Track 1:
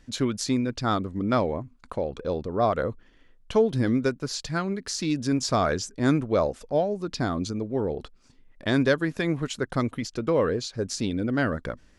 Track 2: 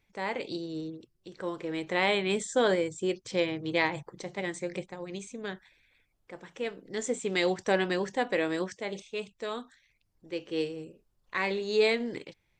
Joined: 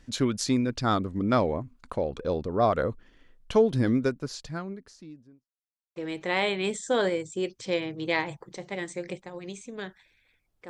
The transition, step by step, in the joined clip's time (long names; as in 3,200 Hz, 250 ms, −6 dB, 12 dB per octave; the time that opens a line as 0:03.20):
track 1
0:03.61–0:05.52: fade out and dull
0:05.52–0:05.96: silence
0:05.96: continue with track 2 from 0:01.62